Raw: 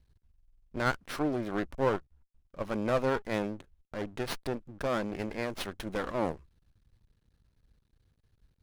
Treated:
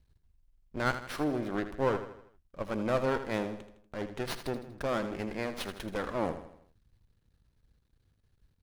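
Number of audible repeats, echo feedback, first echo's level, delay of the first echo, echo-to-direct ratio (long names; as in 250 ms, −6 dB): 4, 48%, −11.0 dB, 80 ms, −10.0 dB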